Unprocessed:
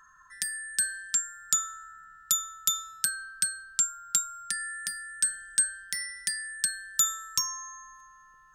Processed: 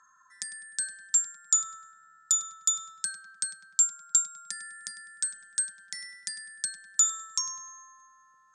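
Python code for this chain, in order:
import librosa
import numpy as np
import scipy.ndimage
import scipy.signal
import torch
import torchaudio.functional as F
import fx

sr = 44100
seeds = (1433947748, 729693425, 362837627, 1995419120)

y = fx.cabinet(x, sr, low_hz=210.0, low_slope=12, high_hz=8100.0, hz=(390.0, 820.0, 1800.0, 2900.0, 7300.0), db=(-7, 4, -4, -9, 9))
y = fx.echo_filtered(y, sr, ms=101, feedback_pct=58, hz=3100.0, wet_db=-11)
y = F.gain(torch.from_numpy(y), -4.0).numpy()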